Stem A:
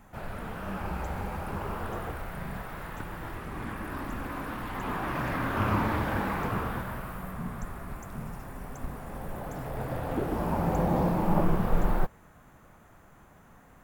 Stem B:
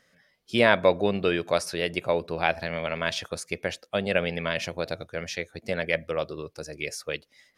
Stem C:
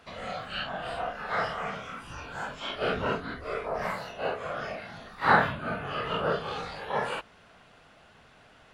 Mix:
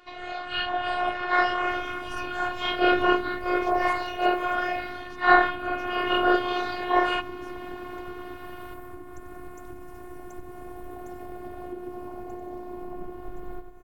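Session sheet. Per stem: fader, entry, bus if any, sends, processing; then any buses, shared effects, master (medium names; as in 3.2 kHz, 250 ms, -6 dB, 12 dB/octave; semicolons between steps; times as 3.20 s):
-7.0 dB, 1.55 s, bus A, no send, echo send -20.5 dB, peaking EQ 270 Hz +9 dB 2.3 oct
-19.0 dB, 0.50 s, bus A, no send, no echo send, none
+2.5 dB, 0.00 s, no bus, no send, no echo send, Bessel low-pass 3.8 kHz, order 2; comb 4.9 ms, depth 76%
bus A: 0.0 dB, compression 6:1, threshold -38 dBFS, peak gain reduction 15.5 dB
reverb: none
echo: feedback delay 93 ms, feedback 54%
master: level rider gain up to 6 dB; robot voice 359 Hz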